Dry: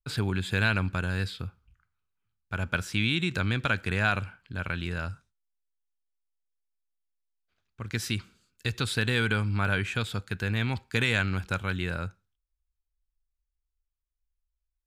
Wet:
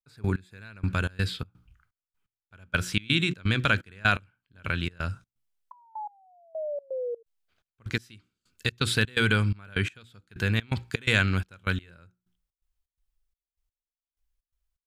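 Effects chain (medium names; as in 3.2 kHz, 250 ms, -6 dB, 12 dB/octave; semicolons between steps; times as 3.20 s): hum notches 60/120/180/240/300/360 Hz; 5.71–7.23 s: painted sound fall 450–1000 Hz -34 dBFS; dynamic bell 820 Hz, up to -5 dB, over -48 dBFS, Q 2.3; trance gate "..x....xx.xx.xxx" 126 bpm -24 dB; peaking EQ 3.1 kHz -11 dB 0.28 oct, from 0.90 s +2 dB; trim +4 dB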